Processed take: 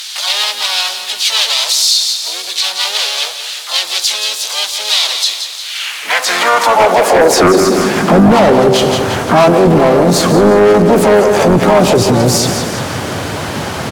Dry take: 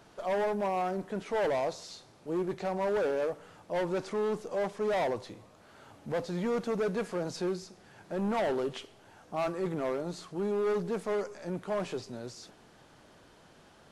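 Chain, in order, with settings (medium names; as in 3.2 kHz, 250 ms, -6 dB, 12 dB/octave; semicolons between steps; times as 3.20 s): de-hum 193 Hz, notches 7; harmony voices +4 st -7 dB, +7 st -7 dB, +12 st -10 dB; in parallel at +2 dB: compression, threshold -36 dBFS, peak gain reduction 11.5 dB; on the sum: dynamic bell 1.8 kHz, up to -6 dB, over -42 dBFS, Q 0.98; high-pass sweep 3.8 kHz -> 89 Hz, 5.62–8.59 s; sine folder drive 11 dB, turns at -10 dBFS; on a send: feedback delay 175 ms, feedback 50%, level -10 dB; on the sum: loudness maximiser +14.5 dB; trim -1 dB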